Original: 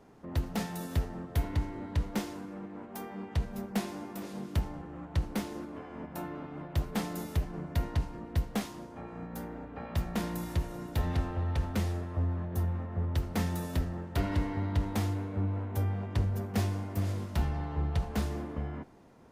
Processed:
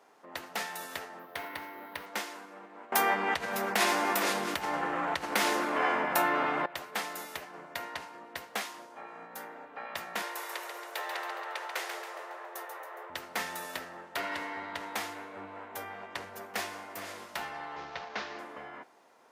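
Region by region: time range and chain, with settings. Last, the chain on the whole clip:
1.19–2.06 LPF 6000 Hz + careless resampling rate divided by 3×, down filtered, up hold
2.92–6.66 low shelf 140 Hz +7 dB + fast leveller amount 70%
10.22–13.1 steep high-pass 330 Hz 72 dB/oct + frequency-shifting echo 0.138 s, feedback 48%, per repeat +100 Hz, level -6.5 dB
17.76–18.39 CVSD 32 kbps + air absorption 75 m
whole clip: HPF 670 Hz 12 dB/oct; dynamic EQ 1900 Hz, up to +5 dB, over -55 dBFS, Q 1.1; gain +3 dB

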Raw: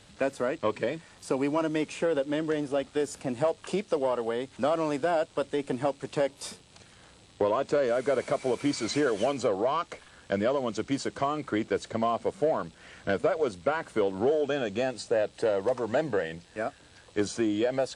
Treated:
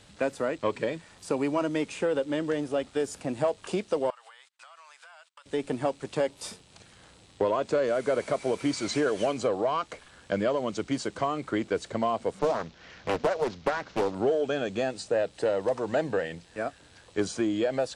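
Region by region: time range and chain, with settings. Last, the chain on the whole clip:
4.1–5.46 gate -43 dBFS, range -33 dB + HPF 1100 Hz 24 dB/oct + compressor 20:1, threshold -47 dBFS
12.39–14.15 CVSD 32 kbps + Doppler distortion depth 0.73 ms
whole clip: dry

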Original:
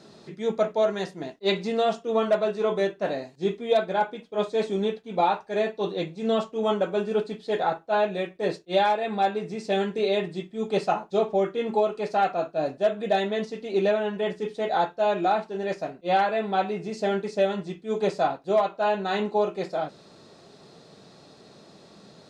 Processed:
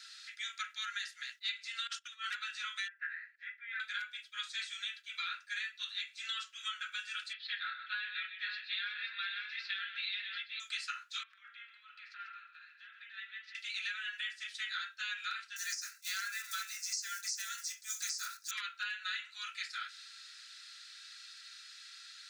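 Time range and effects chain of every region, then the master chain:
1.87–2.31 gate -40 dBFS, range -19 dB + negative-ratio compressor -29 dBFS, ratio -0.5
2.88–3.8 Butterworth band-pass 1700 Hz, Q 2.6 + mismatched tape noise reduction encoder only
7.33–10.6 Chebyshev low-pass 4200 Hz, order 4 + tapped delay 0.127/0.533 s -12.5/-9.5 dB
11.23–13.55 air absorption 340 m + compressor 16:1, threshold -35 dBFS + echo 0.143 s -10 dB
15.56–18.51 block floating point 7-bit + resonant high shelf 4300 Hz +11 dB, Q 3
whole clip: steep high-pass 1400 Hz 72 dB/oct; comb 3 ms, depth 32%; compressor 6:1, threshold -42 dBFS; gain +5.5 dB

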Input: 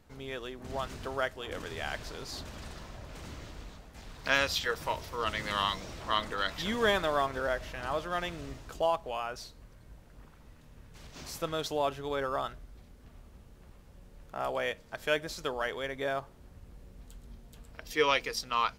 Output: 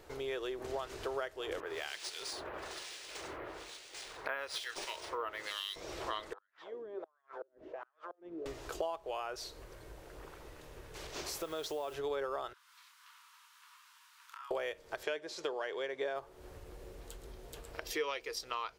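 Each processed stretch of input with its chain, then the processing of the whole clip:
1.6–5.76 tilt +3 dB/oct + harmonic tremolo 1.1 Hz, depth 100%, crossover 1900 Hz + decimation joined by straight lines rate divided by 3×
6.33–8.46 compressor 8:1, threshold -37 dBFS + wah 1.4 Hz 250–1700 Hz, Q 4.7 + flipped gate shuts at -42 dBFS, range -34 dB
11.38–11.94 compressor 2:1, threshold -41 dBFS + requantised 10-bit, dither triangular
12.53–14.51 rippled Chebyshev high-pass 940 Hz, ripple 3 dB + compressor 12:1, threshold -54 dBFS + doubler 28 ms -5 dB
15.03–16.16 BPF 160–6900 Hz + notch 1300 Hz, Q 14
whole clip: compressor 5:1, threshold -46 dBFS; resonant low shelf 290 Hz -7.5 dB, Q 3; gain +7.5 dB

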